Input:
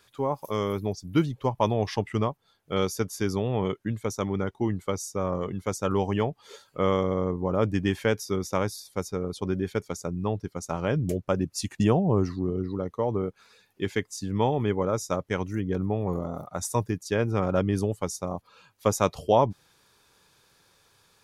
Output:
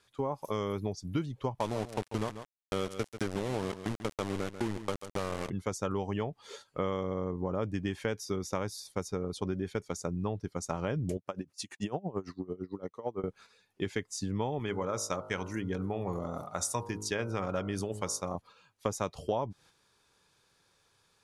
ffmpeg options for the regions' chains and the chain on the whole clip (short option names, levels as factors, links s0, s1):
-filter_complex "[0:a]asettb=1/sr,asplit=3[s0][s1][s2];[s0]atrim=end=1.604[s3];[s1]atrim=start=1.6:end=5.5,asetpts=PTS-STARTPTS,afade=t=in:d=0.004:c=qsin,afade=t=out:st=3.896:d=0.004:c=qsin,aeval=exprs='val(0)*gte(abs(val(0)),0.0447)':c=same,aecho=1:1:140:0.178,atrim=end_sample=171990[s4];[s2]atrim=start=5.496[s5];[s3][s4]acrossfade=d=0.004:c1=hsin:c2=qsin[s6];[s6][s5]acrossfade=d=0.004:c1=qsin:c2=hsin,asettb=1/sr,asplit=3[s7][s8][s9];[s7]atrim=end=11.174[s10];[s8]atrim=start=11.17:end=13.24,asetpts=PTS-STARTPTS,afade=t=in:d=0.004:c=qsin,afade=t=out:st=2.066:d=0.004:c=qsin,highpass=f=310:p=1,aeval=exprs='val(0)*pow(10,-23*(0.5-0.5*cos(2*PI*8.9*n/s))/20)':c=same[s11];[s9]atrim=start=13.236[s12];[s10][s11]acrossfade=d=0.004:c1=hsin:c2=qsin[s13];[s13][s12]acrossfade=d=0.004:c1=qsin:c2=hsin,asettb=1/sr,asplit=3[s14][s15][s16];[s14]atrim=end=14.594[s17];[s15]atrim=start=14.59:end=18.35,asetpts=PTS-STARTPTS,afade=t=in:d=0.004:c=qsin,afade=t=out:st=3.756:d=0.004:c=qsin,tiltshelf=f=820:g=-4,bandreject=f=52.49:t=h:w=4,bandreject=f=104.98:t=h:w=4,bandreject=f=157.47:t=h:w=4,bandreject=f=209.96:t=h:w=4,bandreject=f=262.45:t=h:w=4,bandreject=f=314.94:t=h:w=4,bandreject=f=367.43:t=h:w=4,bandreject=f=419.92:t=h:w=4,bandreject=f=472.41:t=h:w=4,bandreject=f=524.9:t=h:w=4,bandreject=f=577.39:t=h:w=4,bandreject=f=629.88:t=h:w=4,bandreject=f=682.37:t=h:w=4,bandreject=f=734.86:t=h:w=4,bandreject=f=787.35:t=h:w=4,bandreject=f=839.84:t=h:w=4,bandreject=f=892.33:t=h:w=4,bandreject=f=944.82:t=h:w=4,bandreject=f=997.31:t=h:w=4,bandreject=f=1049.8:t=h:w=4,bandreject=f=1102.29:t=h:w=4,bandreject=f=1154.78:t=h:w=4,bandreject=f=1207.27:t=h:w=4,bandreject=f=1259.76:t=h:w=4,bandreject=f=1312.25:t=h:w=4,bandreject=f=1364.74:t=h:w=4,bandreject=f=1417.23:t=h:w=4,bandreject=f=1469.72:t=h:w=4,bandreject=f=1522.21:t=h:w=4[s18];[s16]atrim=start=18.346[s19];[s17][s18]acrossfade=d=0.004:c1=hsin:c2=qsin[s20];[s20][s19]acrossfade=d=0.004:c1=qsin:c2=hsin,lowpass=f=11000:w=0.5412,lowpass=f=11000:w=1.3066,agate=range=0.447:threshold=0.00316:ratio=16:detection=peak,acompressor=threshold=0.0316:ratio=4"